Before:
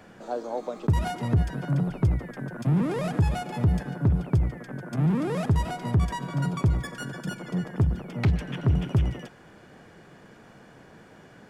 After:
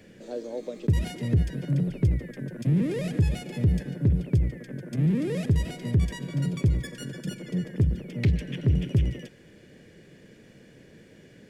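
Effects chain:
flat-topped bell 1,000 Hz −15 dB 1.3 octaves

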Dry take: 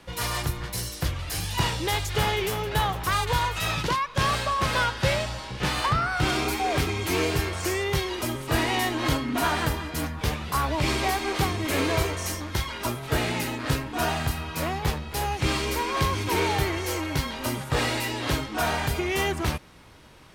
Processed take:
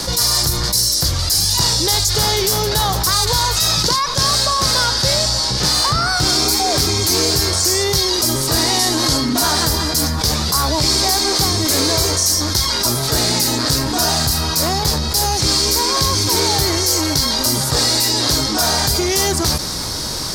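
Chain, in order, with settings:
0:08.75–0:09.18: variable-slope delta modulation 64 kbit/s
high shelf with overshoot 3,600 Hz +10 dB, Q 3
envelope flattener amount 70%
level +2.5 dB

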